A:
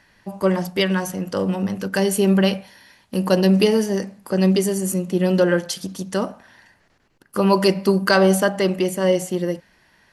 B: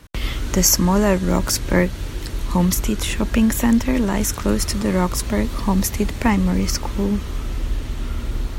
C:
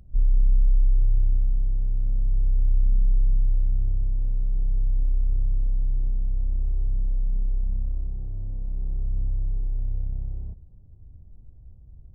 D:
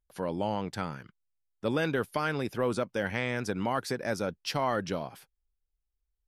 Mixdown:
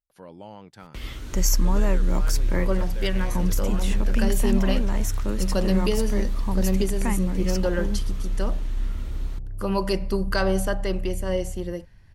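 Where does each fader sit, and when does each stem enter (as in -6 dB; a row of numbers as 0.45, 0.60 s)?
-8.5, -10.5, -2.5, -11.0 dB; 2.25, 0.80, 1.20, 0.00 s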